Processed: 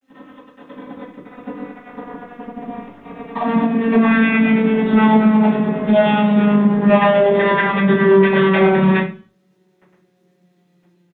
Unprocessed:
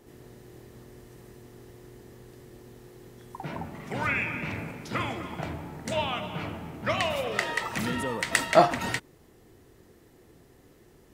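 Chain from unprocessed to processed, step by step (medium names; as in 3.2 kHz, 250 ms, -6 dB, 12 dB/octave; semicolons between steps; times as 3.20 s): vocoder on a note that slides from C4, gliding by -7 st; waveshaping leveller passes 5; level rider gain up to 5.5 dB; treble shelf 2.6 kHz -6.5 dB; compression 3:1, threshold -15 dBFS, peak gain reduction 7.5 dB; harmonic tremolo 9.3 Hz, depth 50%, crossover 430 Hz; resampled via 8 kHz; word length cut 12-bit, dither none; reverberation RT60 0.40 s, pre-delay 3 ms, DRR -11 dB; trim -6.5 dB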